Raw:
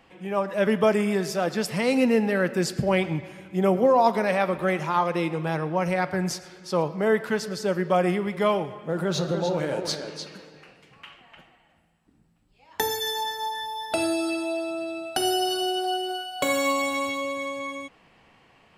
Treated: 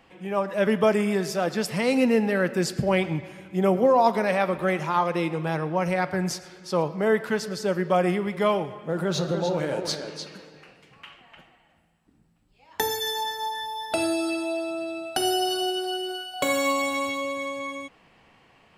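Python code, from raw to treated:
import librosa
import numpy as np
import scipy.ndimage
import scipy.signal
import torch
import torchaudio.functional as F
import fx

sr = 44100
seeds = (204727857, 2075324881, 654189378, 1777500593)

y = fx.peak_eq(x, sr, hz=780.0, db=-9.5, octaves=0.25, at=(15.7, 16.34))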